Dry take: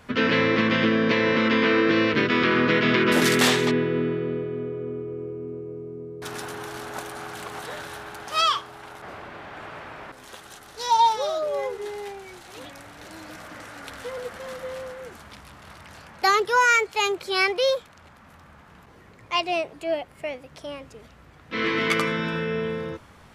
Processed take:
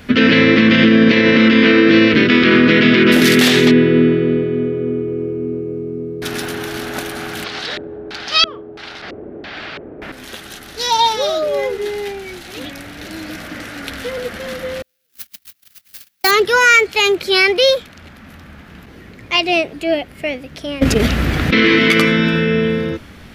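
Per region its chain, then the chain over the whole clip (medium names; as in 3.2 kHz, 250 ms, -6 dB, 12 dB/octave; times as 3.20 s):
7.44–10.02 s: bass shelf 440 Hz -7 dB + LFO low-pass square 1.5 Hz 420–4700 Hz
14.82–16.31 s: zero-crossing glitches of -16.5 dBFS + gate -24 dBFS, range -51 dB
20.81–21.76 s: gate -42 dBFS, range -18 dB + level flattener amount 100%
whole clip: ten-band graphic EQ 125 Hz -5 dB, 250 Hz +3 dB, 500 Hz -4 dB, 1 kHz -12 dB, 8 kHz -8 dB; loudness maximiser +16 dB; trim -1 dB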